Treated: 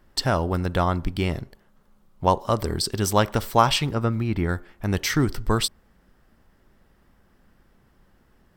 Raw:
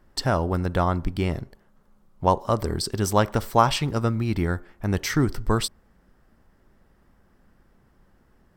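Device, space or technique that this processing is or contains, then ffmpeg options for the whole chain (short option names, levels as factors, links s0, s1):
presence and air boost: -filter_complex "[0:a]asettb=1/sr,asplit=3[s0][s1][s2];[s0]atrim=end=3.864[s3];[s1]atrim=start=3.86:end=4.49,asetpts=PTS-STARTPTS,afade=t=in:d=0.004:c=qsin,afade=t=out:st=0.626:d=0.004:c=qsin,acrossover=split=2500[s4][s5];[s5]acompressor=threshold=0.00251:ratio=4:attack=1:release=60[s6];[s4][s6]amix=inputs=2:normalize=0[s7];[s2]atrim=start=4.486[s8];[s3][s7]acrossfade=d=0.004:c1=hsin:c2=qsin[s9];[s9][s8]acrossfade=d=0.004:c1=qsin:c2=hsin,equalizer=f=3200:t=o:w=1.3:g=4.5,highshelf=f=10000:g=5"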